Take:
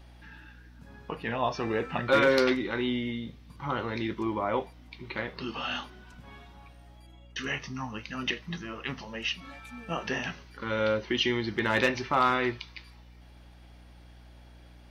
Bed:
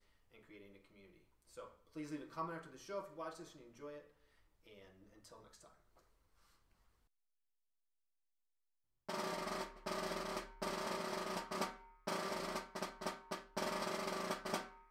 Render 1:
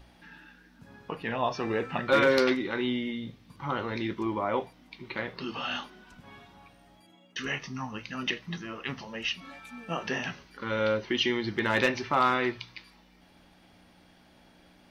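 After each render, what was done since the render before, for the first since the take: de-hum 60 Hz, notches 2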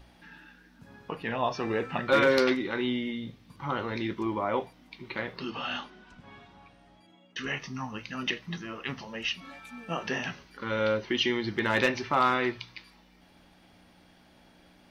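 5.50–7.57 s: distance through air 59 m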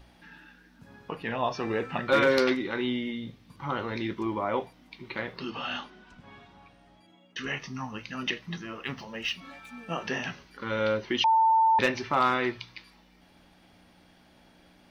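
8.76–9.74 s: median filter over 3 samples; 11.24–11.79 s: bleep 894 Hz -18 dBFS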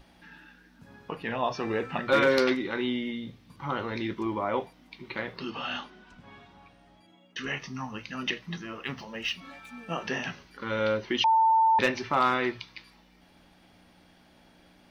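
hum notches 60/120 Hz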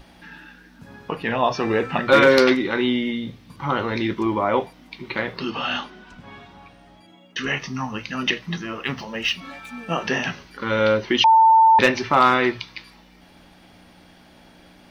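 trim +8.5 dB

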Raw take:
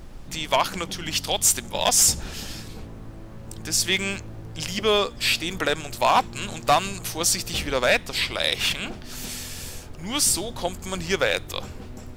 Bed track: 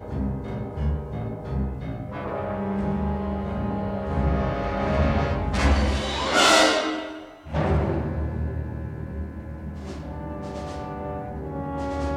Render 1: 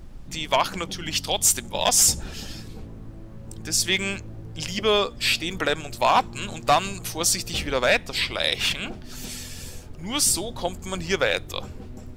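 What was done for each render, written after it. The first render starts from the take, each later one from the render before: noise reduction 6 dB, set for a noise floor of -40 dBFS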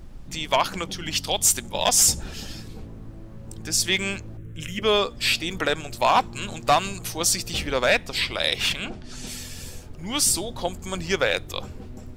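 4.37–4.82 s: static phaser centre 2 kHz, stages 4; 8.86–9.27 s: low-pass 9.6 kHz 24 dB/octave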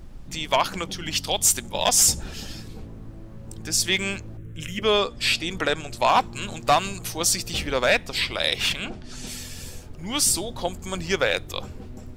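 4.86–6.09 s: low-pass 11 kHz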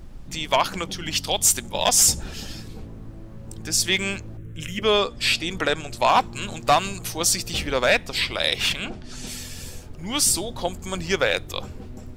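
trim +1 dB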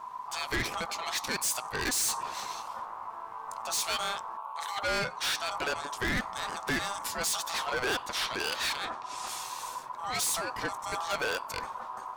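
saturation -24 dBFS, distortion -5 dB; ring modulator 1 kHz

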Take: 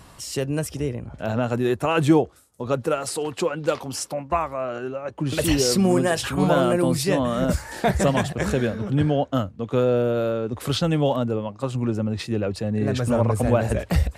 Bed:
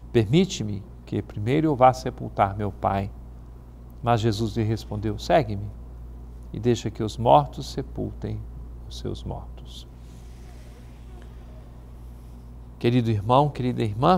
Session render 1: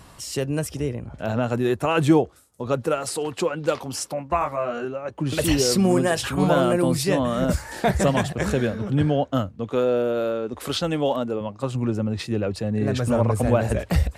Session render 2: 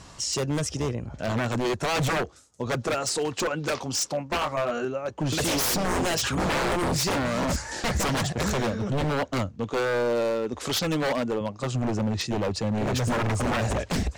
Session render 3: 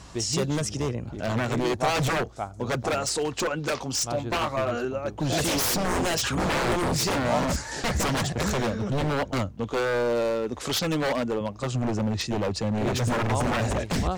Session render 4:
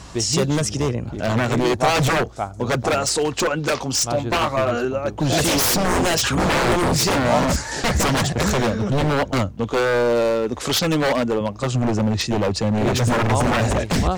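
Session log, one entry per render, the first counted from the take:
4.39–4.85 s: doubling 21 ms -2 dB; 9.72–11.41 s: peaking EQ 120 Hz -11 dB 1.1 oct
resonant low-pass 6.5 kHz, resonance Q 2.4; wavefolder -20 dBFS
add bed -12 dB
trim +6.5 dB

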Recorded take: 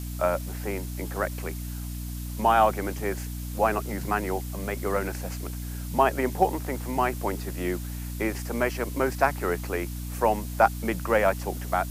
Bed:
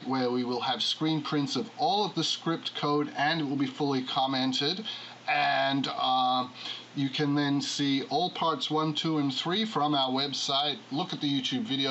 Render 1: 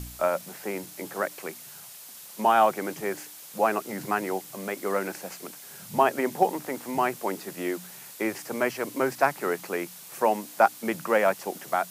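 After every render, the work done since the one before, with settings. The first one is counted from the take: de-hum 60 Hz, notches 5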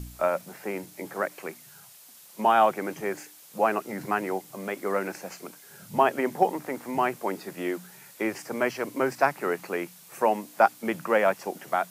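noise print and reduce 6 dB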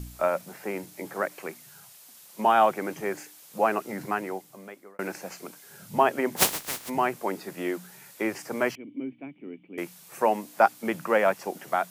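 3.94–4.99 s: fade out; 6.36–6.88 s: spectral contrast reduction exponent 0.17; 8.75–9.78 s: cascade formant filter i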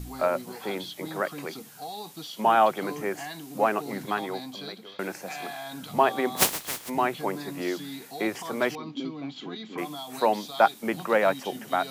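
add bed -11.5 dB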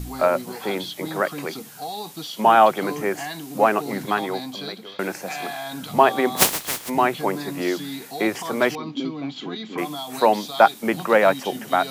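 trim +6 dB; peak limiter -1 dBFS, peak gain reduction 2.5 dB

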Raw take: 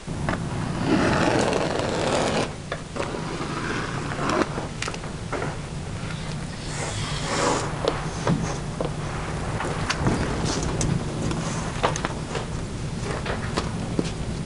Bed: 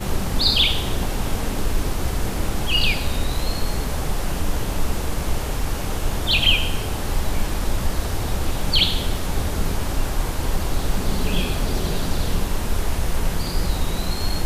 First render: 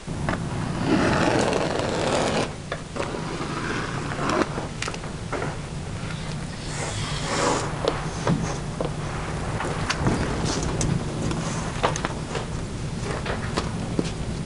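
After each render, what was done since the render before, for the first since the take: no audible change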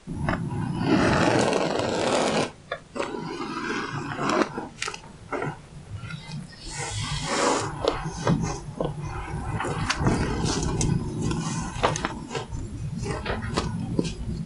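noise print and reduce 13 dB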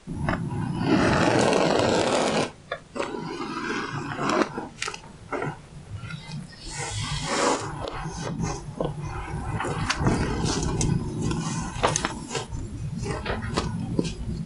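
1.37–2.02 s: level flattener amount 70%; 7.55–8.39 s: compression 12:1, threshold -26 dBFS; 11.87–12.47 s: treble shelf 5.3 kHz +11.5 dB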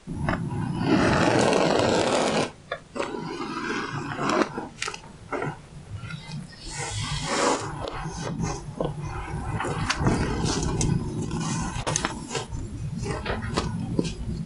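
11.18–11.87 s: compressor with a negative ratio -28 dBFS, ratio -0.5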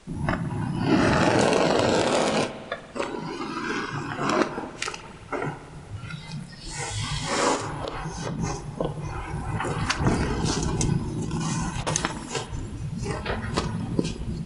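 spring tank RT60 2.1 s, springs 56 ms, chirp 40 ms, DRR 12.5 dB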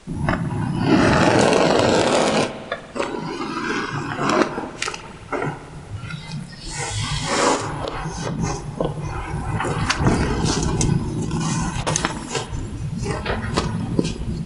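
trim +5 dB; peak limiter -1 dBFS, peak gain reduction 1 dB

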